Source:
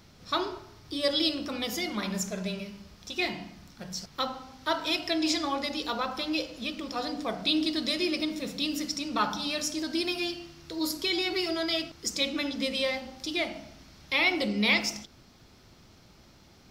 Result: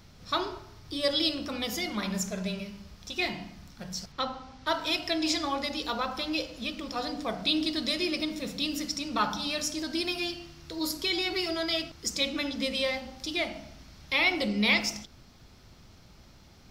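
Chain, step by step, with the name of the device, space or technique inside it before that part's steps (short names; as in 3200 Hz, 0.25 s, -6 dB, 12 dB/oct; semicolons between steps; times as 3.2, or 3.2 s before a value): 4.12–4.67 air absorption 66 m; low shelf boost with a cut just above (low shelf 82 Hz +7.5 dB; bell 340 Hz -2.5 dB 0.77 oct)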